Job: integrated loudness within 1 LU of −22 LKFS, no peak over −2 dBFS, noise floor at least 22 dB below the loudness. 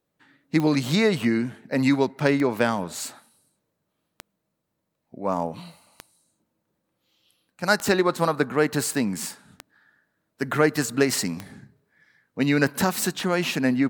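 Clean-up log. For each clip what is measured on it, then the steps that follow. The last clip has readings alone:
number of clicks 8; integrated loudness −24.0 LKFS; sample peak −4.5 dBFS; target loudness −22.0 LKFS
→ click removal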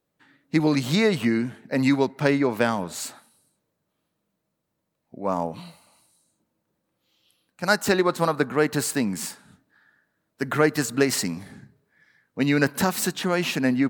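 number of clicks 0; integrated loudness −24.0 LKFS; sample peak −4.5 dBFS; target loudness −22.0 LKFS
→ level +2 dB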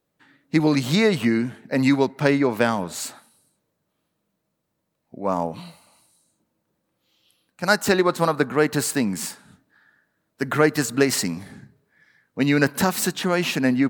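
integrated loudness −22.0 LKFS; sample peak −2.5 dBFS; background noise floor −76 dBFS

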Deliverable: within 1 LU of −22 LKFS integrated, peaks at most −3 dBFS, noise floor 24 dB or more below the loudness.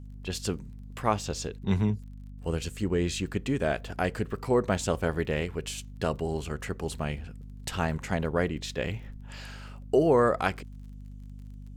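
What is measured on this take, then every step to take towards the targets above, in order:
crackle rate 27 per second; mains hum 50 Hz; hum harmonics up to 250 Hz; level of the hum −41 dBFS; integrated loudness −30.0 LKFS; sample peak −8.5 dBFS; target loudness −22.0 LKFS
→ click removal
mains-hum notches 50/100/150/200/250 Hz
level +8 dB
brickwall limiter −3 dBFS

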